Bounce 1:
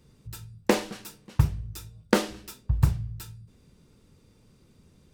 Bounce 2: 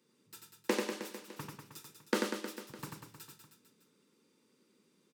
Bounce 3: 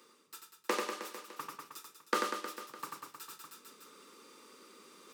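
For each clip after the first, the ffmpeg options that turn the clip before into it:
ffmpeg -i in.wav -af "highpass=frequency=230:width=0.5412,highpass=frequency=230:width=1.3066,equalizer=frequency=690:width_type=o:width=0.29:gain=-14,aecho=1:1:90|193.5|312.5|449.4|606.8:0.631|0.398|0.251|0.158|0.1,volume=-8.5dB" out.wav
ffmpeg -i in.wav -af "highpass=400,equalizer=frequency=1200:width=6.1:gain=13,areverse,acompressor=mode=upward:threshold=-42dB:ratio=2.5,areverse" out.wav

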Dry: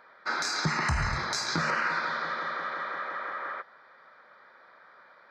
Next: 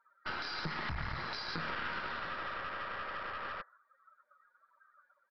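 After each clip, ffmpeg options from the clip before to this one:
ffmpeg -i in.wav -af "afftdn=noise_reduction=29:noise_floor=-44,acompressor=threshold=-38dB:ratio=2,aresample=11025,aeval=exprs='clip(val(0),-1,0.00668)':channel_layout=same,aresample=44100" out.wav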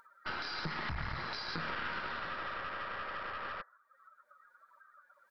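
ffmpeg -i in.wav -af "acompressor=mode=upward:threshold=-54dB:ratio=2.5" out.wav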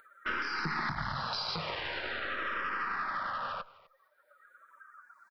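ffmpeg -i in.wav -filter_complex "[0:a]lowshelf=frequency=190:gain=-4.5,aecho=1:1:253:0.0944,asplit=2[link_01][link_02];[link_02]afreqshift=-0.45[link_03];[link_01][link_03]amix=inputs=2:normalize=1,volume=7.5dB" out.wav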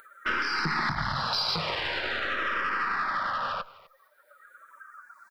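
ffmpeg -i in.wav -filter_complex "[0:a]highshelf=frequency=5500:gain=7,asplit=2[link_01][link_02];[link_02]asoftclip=type=tanh:threshold=-33.5dB,volume=-11.5dB[link_03];[link_01][link_03]amix=inputs=2:normalize=0,volume=4dB" out.wav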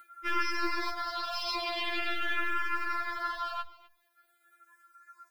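ffmpeg -i in.wav -af "asuperstop=centerf=1200:order=4:qfactor=4.8,acrusher=bits=7:mode=log:mix=0:aa=0.000001,afftfilt=real='re*4*eq(mod(b,16),0)':imag='im*4*eq(mod(b,16),0)':win_size=2048:overlap=0.75" out.wav

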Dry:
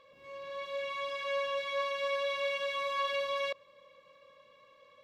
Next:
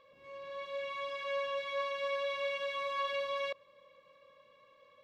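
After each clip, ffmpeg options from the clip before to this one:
ffmpeg -i in.wav -af "highshelf=frequency=5300:gain=-6.5,volume=-2dB" out.wav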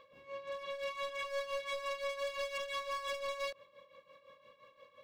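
ffmpeg -i in.wav -af "asoftclip=type=hard:threshold=-38.5dB,tremolo=f=5.8:d=0.7,volume=4.5dB" out.wav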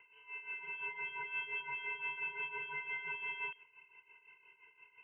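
ffmpeg -i in.wav -filter_complex "[0:a]acrossover=split=1500[link_01][link_02];[link_01]acrusher=bits=6:mode=log:mix=0:aa=0.000001[link_03];[link_03][link_02]amix=inputs=2:normalize=0,lowpass=frequency=2700:width_type=q:width=0.5098,lowpass=frequency=2700:width_type=q:width=0.6013,lowpass=frequency=2700:width_type=q:width=0.9,lowpass=frequency=2700:width_type=q:width=2.563,afreqshift=-3200,volume=-2dB" out.wav

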